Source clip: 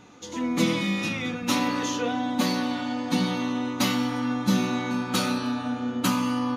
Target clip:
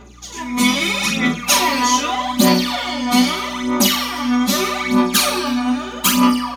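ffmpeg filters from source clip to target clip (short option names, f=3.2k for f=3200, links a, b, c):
-filter_complex "[0:a]highpass=250,highshelf=f=6k:g=10.5,aecho=1:1:5:0.97,dynaudnorm=f=490:g=3:m=11.5dB,aphaser=in_gain=1:out_gain=1:delay=4.1:decay=0.78:speed=0.8:type=sinusoidal,aeval=exprs='val(0)+0.0112*(sin(2*PI*60*n/s)+sin(2*PI*2*60*n/s)/2+sin(2*PI*3*60*n/s)/3+sin(2*PI*4*60*n/s)/4+sin(2*PI*5*60*n/s)/5)':c=same,asplit=2[a][b];[b]aecho=0:1:14|44:0.422|0.447[c];[a][c]amix=inputs=2:normalize=0,alimiter=level_in=-3dB:limit=-1dB:release=50:level=0:latency=1,volume=-1dB"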